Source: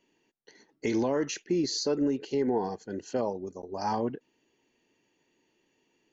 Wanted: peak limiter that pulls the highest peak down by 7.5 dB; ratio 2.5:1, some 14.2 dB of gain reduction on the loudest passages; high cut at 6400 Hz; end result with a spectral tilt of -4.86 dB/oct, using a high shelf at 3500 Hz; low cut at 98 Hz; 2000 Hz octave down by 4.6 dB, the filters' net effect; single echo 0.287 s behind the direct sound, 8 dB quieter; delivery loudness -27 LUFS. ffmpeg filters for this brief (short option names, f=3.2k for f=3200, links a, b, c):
-af "highpass=98,lowpass=6.4k,equalizer=f=2k:t=o:g=-3,highshelf=f=3.5k:g=-9,acompressor=threshold=-46dB:ratio=2.5,alimiter=level_in=12dB:limit=-24dB:level=0:latency=1,volume=-12dB,aecho=1:1:287:0.398,volume=18.5dB"